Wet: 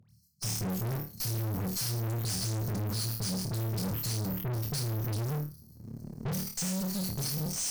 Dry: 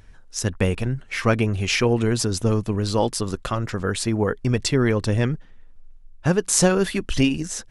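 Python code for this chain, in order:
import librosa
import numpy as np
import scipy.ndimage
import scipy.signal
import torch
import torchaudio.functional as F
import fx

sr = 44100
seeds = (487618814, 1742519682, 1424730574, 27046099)

p1 = fx.recorder_agc(x, sr, target_db=-5.0, rise_db_per_s=23.0, max_gain_db=30)
p2 = np.repeat(scipy.signal.resample_poly(p1, 1, 3), 3)[:len(p1)]
p3 = fx.brickwall_bandstop(p2, sr, low_hz=200.0, high_hz=4100.0)
p4 = fx.peak_eq(p3, sr, hz=530.0, db=-6.0, octaves=2.5)
p5 = fx.dispersion(p4, sr, late='highs', ms=92.0, hz=1200.0)
p6 = fx.fuzz(p5, sr, gain_db=30.0, gate_db=-31.0)
p7 = p5 + F.gain(torch.from_numpy(p6), -10.5).numpy()
p8 = scipy.signal.sosfilt(scipy.signal.butter(4, 110.0, 'highpass', fs=sr, output='sos'), p7)
p9 = fx.peak_eq(p8, sr, hz=230.0, db=8.0, octaves=0.29)
p10 = fx.room_flutter(p9, sr, wall_m=4.6, rt60_s=0.34)
y = fx.tube_stage(p10, sr, drive_db=31.0, bias=0.65)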